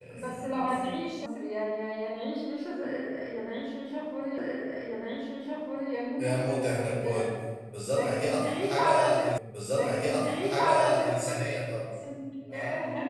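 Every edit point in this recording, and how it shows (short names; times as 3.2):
1.26 sound cut off
4.38 repeat of the last 1.55 s
9.38 repeat of the last 1.81 s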